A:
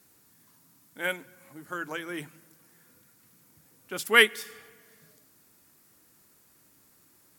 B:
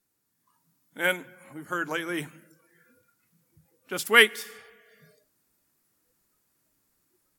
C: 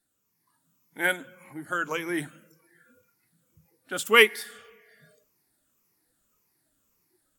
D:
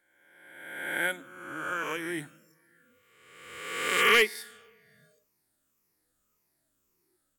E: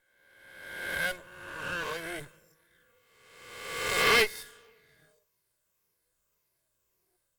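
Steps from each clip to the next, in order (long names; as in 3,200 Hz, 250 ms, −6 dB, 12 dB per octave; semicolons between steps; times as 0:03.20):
noise reduction from a noise print of the clip's start 16 dB; automatic gain control gain up to 5 dB
rippled gain that drifts along the octave scale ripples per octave 0.8, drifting −1.8 Hz, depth 9 dB; level −1 dB
peak hold with a rise ahead of every peak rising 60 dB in 1.32 s; hard clipping −7 dBFS, distortion −16 dB; level −7 dB
lower of the sound and its delayed copy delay 1.9 ms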